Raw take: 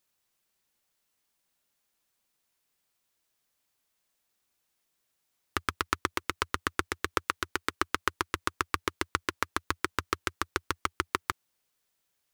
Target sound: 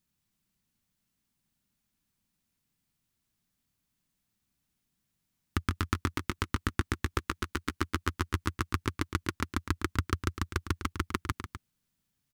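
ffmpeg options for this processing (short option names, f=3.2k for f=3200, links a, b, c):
-af "lowshelf=f=310:t=q:w=1.5:g=14,aecho=1:1:142.9|250.7:0.316|0.282,volume=-4.5dB"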